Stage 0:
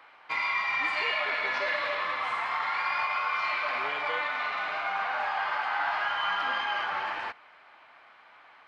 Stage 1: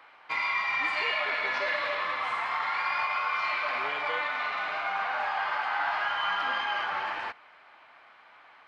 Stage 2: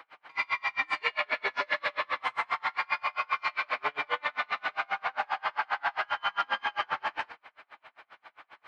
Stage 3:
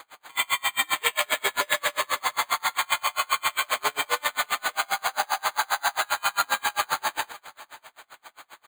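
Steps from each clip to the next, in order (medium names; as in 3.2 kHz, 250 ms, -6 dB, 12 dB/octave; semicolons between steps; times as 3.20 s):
no audible change
in parallel at -1.5 dB: peak limiter -29 dBFS, peak gain reduction 11 dB; on the sum: flange 0.54 Hz, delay 6 ms, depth 3.6 ms, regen +75%; logarithmic tremolo 7.5 Hz, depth 36 dB; trim +6.5 dB
delay 553 ms -20 dB; careless resampling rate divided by 8×, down none, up hold; trim +5 dB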